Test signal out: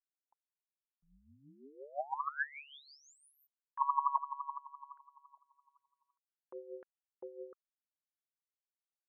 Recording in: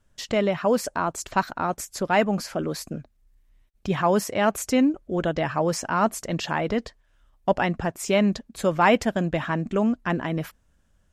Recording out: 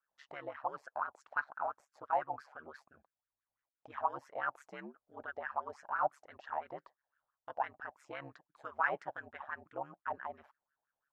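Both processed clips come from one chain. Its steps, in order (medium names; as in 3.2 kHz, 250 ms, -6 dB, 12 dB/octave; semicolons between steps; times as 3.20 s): wah-wah 5.9 Hz 710–1600 Hz, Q 8.2; ring modulator 71 Hz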